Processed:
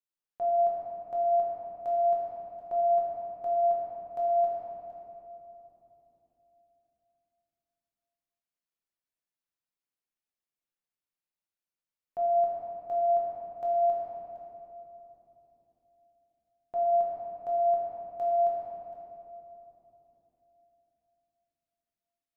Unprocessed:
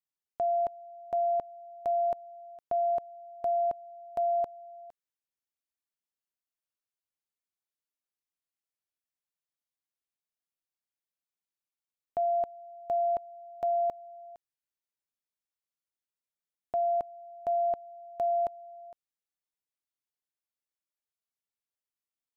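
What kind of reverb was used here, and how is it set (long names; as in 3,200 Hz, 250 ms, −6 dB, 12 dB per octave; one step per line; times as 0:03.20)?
rectangular room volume 180 cubic metres, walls hard, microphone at 0.94 metres
level −8 dB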